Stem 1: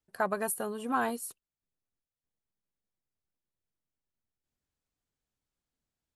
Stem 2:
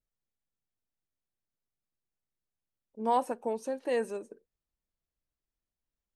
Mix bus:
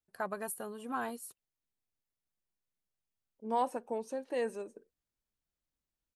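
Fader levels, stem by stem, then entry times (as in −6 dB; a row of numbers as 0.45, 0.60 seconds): −7.0, −4.0 decibels; 0.00, 0.45 seconds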